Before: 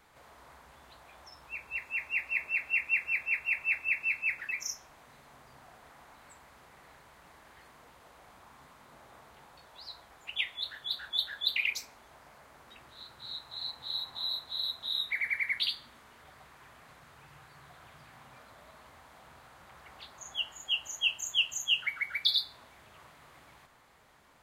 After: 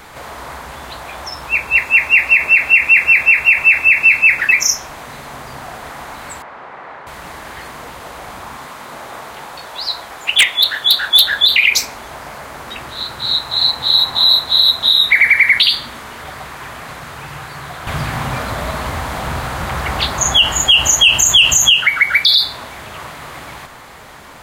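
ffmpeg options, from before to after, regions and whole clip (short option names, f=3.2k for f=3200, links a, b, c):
-filter_complex "[0:a]asettb=1/sr,asplit=3[a][b][c];[a]atrim=end=6.424[d];[b]atrim=start=6.42:end=7.07,asetpts=PTS-STARTPTS,afade=t=in:d=0.004:c=qsin,afade=t=out:st=0.646:d=0.004:c=qsin,bandpass=f=1k:t=q:w=0.54,aemphasis=mode=reproduction:type=75fm[e];[c]atrim=start=7.066[f];[d][e]acrossfade=d=0.004:c1=hsin:c2=qsin[g];[g][f]acrossfade=d=0.004:c1=qsin:c2=hsin,asettb=1/sr,asplit=3[h][i][j];[h]atrim=end=8.574[k];[i]atrim=start=8.57:end=11.26,asetpts=PTS-STARTPTS,afade=t=in:d=0.004:c=qsin,afade=t=out:st=2.686:d=0.004:c=qsin,lowshelf=f=170:g=-10,aeval=exprs='0.0473*(abs(mod(val(0)/0.0473+3,4)-2)-1)':c=same[l];[j]atrim=start=11.256[m];[k][l]acrossfade=d=0.004:c1=hsin:c2=qsin[n];[n][m]acrossfade=d=0.004:c1=qsin:c2=hsin,asettb=1/sr,asplit=3[o][p][q];[o]atrim=end=17.874[r];[p]atrim=start=17.87:end=21.7,asetpts=PTS-STARTPTS,afade=t=in:d=0.004:c=qsin,afade=t=out:st=3.826:d=0.004:c=qsin,lowshelf=f=190:g=10,acontrast=58[s];[q]atrim=start=21.696[t];[r][s]acrossfade=d=0.004:c1=hsin:c2=qsin[u];[u][t]acrossfade=d=0.004:c1=qsin:c2=hsin,acontrast=87,alimiter=level_in=18.5dB:limit=-1dB:release=50:level=0:latency=1,volume=-1dB"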